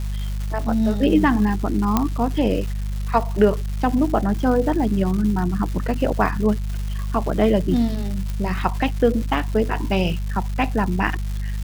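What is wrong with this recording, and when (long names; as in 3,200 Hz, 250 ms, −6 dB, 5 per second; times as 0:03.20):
surface crackle 440 per second −29 dBFS
mains hum 50 Hz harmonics 4 −25 dBFS
0:01.97: click −4 dBFS
0:08.30: click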